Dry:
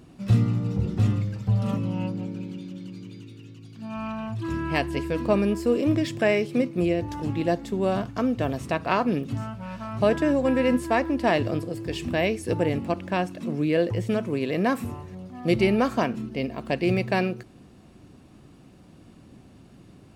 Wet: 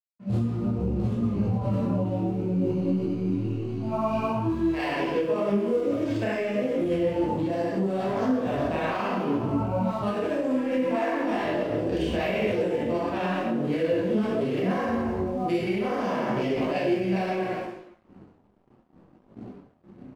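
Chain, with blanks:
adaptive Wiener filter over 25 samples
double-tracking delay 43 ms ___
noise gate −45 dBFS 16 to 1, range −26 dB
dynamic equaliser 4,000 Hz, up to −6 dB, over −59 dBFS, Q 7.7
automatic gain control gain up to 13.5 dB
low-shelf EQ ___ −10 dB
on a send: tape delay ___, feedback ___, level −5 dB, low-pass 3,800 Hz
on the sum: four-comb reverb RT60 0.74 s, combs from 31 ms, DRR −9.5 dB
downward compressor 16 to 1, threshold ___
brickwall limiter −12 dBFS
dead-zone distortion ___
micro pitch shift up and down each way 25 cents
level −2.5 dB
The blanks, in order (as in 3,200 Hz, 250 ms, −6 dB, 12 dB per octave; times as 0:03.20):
−3 dB, 88 Hz, 66 ms, 56%, −12 dBFS, −46.5 dBFS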